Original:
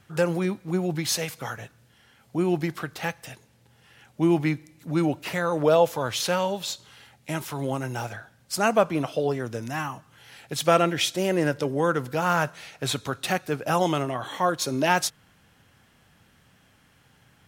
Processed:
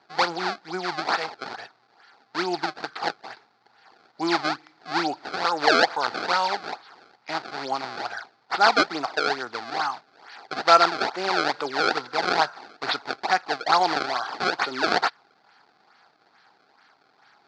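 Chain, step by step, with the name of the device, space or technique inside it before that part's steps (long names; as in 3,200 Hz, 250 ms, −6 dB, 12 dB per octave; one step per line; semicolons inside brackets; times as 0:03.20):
circuit-bent sampling toy (sample-and-hold swept by an LFO 27×, swing 160% 2.3 Hz; loudspeaker in its box 520–5,000 Hz, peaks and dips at 550 Hz −9 dB, 790 Hz +7 dB, 1,400 Hz +6 dB, 2,900 Hz −6 dB, 4,500 Hz +9 dB)
level +3.5 dB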